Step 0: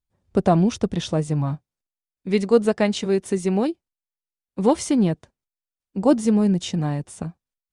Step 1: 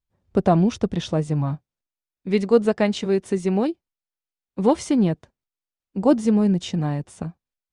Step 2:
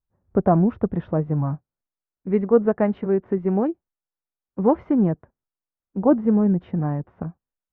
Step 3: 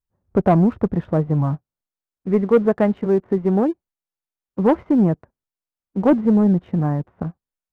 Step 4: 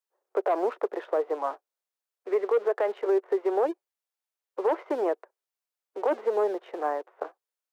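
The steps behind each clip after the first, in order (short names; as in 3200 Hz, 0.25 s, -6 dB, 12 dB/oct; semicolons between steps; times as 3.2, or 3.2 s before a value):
high shelf 8300 Hz -11.5 dB
LPF 1600 Hz 24 dB/oct
sample leveller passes 1
steep high-pass 390 Hz 48 dB/oct; limiter -18 dBFS, peak gain reduction 11.5 dB; gain +1.5 dB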